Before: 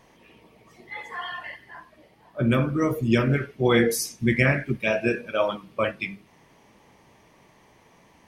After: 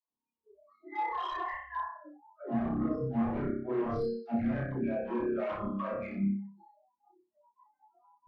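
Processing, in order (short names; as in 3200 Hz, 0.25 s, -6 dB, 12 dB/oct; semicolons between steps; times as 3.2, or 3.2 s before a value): nonlinear frequency compression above 3800 Hz 4:1; phaser 0.71 Hz, delay 3.9 ms, feedback 42%; reverse; compressor 16:1, threshold -33 dBFS, peak gain reduction 20.5 dB; reverse; ten-band EQ 125 Hz -3 dB, 250 Hz +10 dB, 1000 Hz +11 dB, 4000 Hz -6 dB; upward compressor, threshold -46 dBFS; on a send: flutter echo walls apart 5.2 m, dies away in 0.86 s; on the sum: wavefolder -25.5 dBFS; high shelf 2400 Hz -11 dB; dispersion lows, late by 0.138 s, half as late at 330 Hz; spectral noise reduction 29 dB; spectral expander 1.5:1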